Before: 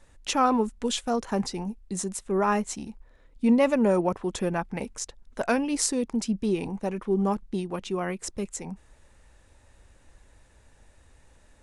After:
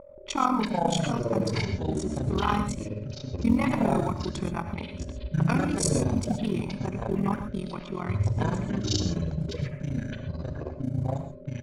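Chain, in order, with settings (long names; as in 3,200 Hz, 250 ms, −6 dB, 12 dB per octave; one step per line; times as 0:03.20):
mu-law and A-law mismatch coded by A
steady tone 570 Hz −33 dBFS
comb filter 0.9 ms, depth 67%
low-pass that shuts in the quiet parts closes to 1,500 Hz, open at −22 dBFS
amplitude modulation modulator 42 Hz, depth 95%
delay with pitch and tempo change per echo 178 ms, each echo −7 semitones, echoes 3
on a send: convolution reverb, pre-delay 3 ms, DRR 8.5 dB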